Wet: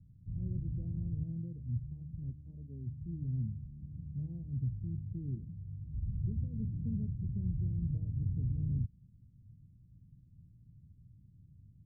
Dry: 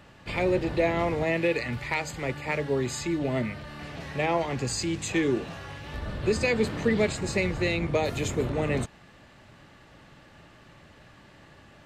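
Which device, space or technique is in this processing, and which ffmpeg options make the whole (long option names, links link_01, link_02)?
the neighbour's flat through the wall: -filter_complex "[0:a]lowpass=frequency=170:width=0.5412,lowpass=frequency=170:width=1.3066,equalizer=frequency=100:width_type=o:width=0.77:gain=5,asplit=3[link_01][link_02][link_03];[link_01]afade=type=out:start_time=2.29:duration=0.02[link_04];[link_02]equalizer=frequency=140:width_type=o:width=0.91:gain=-9.5,afade=type=in:start_time=2.29:duration=0.02,afade=type=out:start_time=2.86:duration=0.02[link_05];[link_03]afade=type=in:start_time=2.86:duration=0.02[link_06];[link_04][link_05][link_06]amix=inputs=3:normalize=0,volume=-3dB"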